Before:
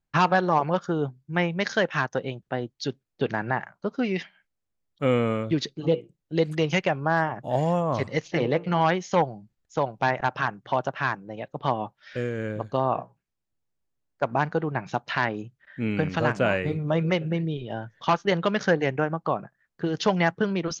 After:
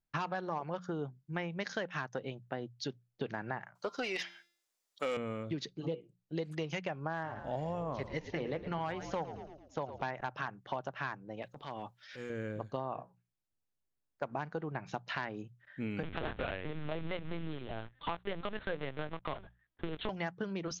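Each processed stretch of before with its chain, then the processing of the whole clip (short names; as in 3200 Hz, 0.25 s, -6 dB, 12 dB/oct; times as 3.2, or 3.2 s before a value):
3.75–5.17 tone controls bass -14 dB, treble +15 dB + de-hum 344.9 Hz, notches 30 + overdrive pedal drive 17 dB, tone 3100 Hz, clips at -10.5 dBFS
7.13–10.03 hard clip -12 dBFS + LPF 5700 Hz + frequency-shifting echo 0.111 s, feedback 49%, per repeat -54 Hz, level -13 dB
11.42–12.3 high shelf 2300 Hz +10 dB + compressor 5:1, threshold -28 dBFS + transient shaper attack -11 dB, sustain 0 dB
16.03–20.09 block floating point 3-bit + LPC vocoder at 8 kHz pitch kept
whole clip: notches 60/120/180 Hz; compressor 4:1, threshold -27 dBFS; gain -7 dB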